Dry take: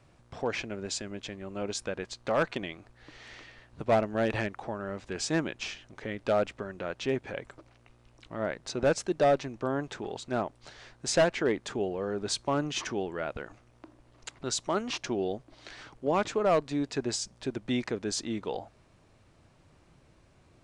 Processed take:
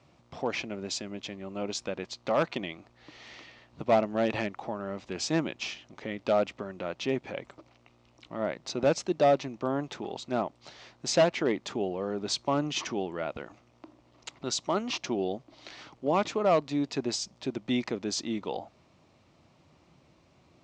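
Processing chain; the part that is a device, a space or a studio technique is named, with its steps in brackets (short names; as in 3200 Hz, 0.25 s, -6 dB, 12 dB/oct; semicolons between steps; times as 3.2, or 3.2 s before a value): car door speaker (speaker cabinet 95–6700 Hz, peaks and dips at 110 Hz -6 dB, 440 Hz -4 dB, 1600 Hz -8 dB); gain +2 dB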